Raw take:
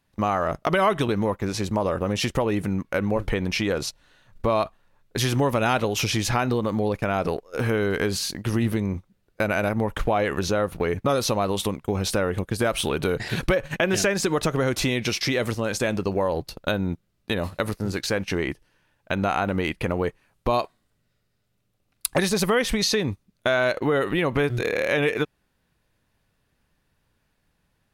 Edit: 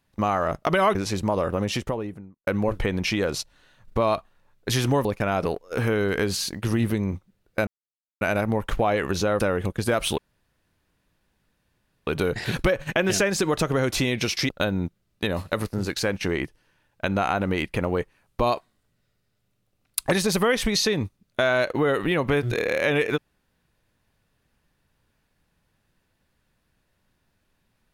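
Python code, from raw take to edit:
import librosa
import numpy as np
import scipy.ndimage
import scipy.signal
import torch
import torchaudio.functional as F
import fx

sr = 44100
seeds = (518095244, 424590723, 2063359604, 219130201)

y = fx.studio_fade_out(x, sr, start_s=2.0, length_s=0.95)
y = fx.edit(y, sr, fx.cut(start_s=0.95, length_s=0.48),
    fx.cut(start_s=5.53, length_s=1.34),
    fx.insert_silence(at_s=9.49, length_s=0.54),
    fx.cut(start_s=10.68, length_s=1.45),
    fx.insert_room_tone(at_s=12.91, length_s=1.89),
    fx.cut(start_s=15.33, length_s=1.23), tone=tone)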